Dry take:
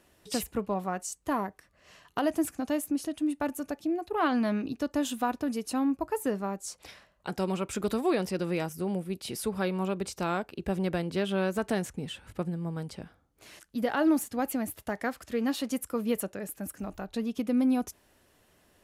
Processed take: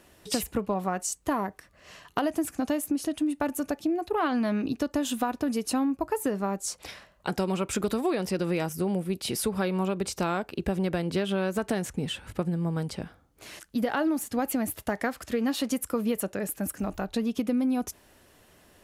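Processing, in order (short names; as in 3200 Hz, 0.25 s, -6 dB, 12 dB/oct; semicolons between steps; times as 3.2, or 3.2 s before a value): compressor, threshold -30 dBFS, peak gain reduction 10 dB; gain +6.5 dB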